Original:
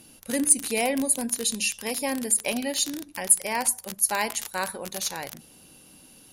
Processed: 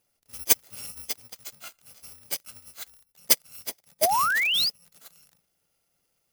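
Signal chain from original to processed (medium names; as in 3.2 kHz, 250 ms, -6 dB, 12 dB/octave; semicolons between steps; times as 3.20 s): bit-reversed sample order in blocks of 128 samples; painted sound rise, 4.01–4.70 s, 590–5200 Hz -18 dBFS; upward expansion 2.5:1, over -29 dBFS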